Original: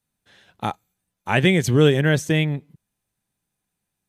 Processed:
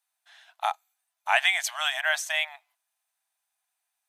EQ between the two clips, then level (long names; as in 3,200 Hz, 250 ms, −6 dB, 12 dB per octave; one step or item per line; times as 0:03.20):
linear-phase brick-wall high-pass 620 Hz
0.0 dB